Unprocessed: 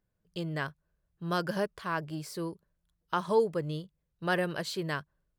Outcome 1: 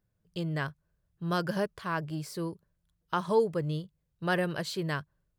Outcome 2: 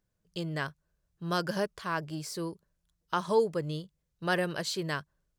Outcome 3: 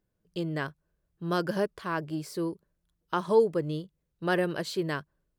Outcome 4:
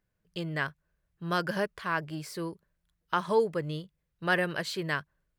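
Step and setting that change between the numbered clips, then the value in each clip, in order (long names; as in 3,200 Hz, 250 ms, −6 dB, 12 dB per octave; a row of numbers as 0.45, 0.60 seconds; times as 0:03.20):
parametric band, centre frequency: 110, 6,300, 330, 2,000 Hertz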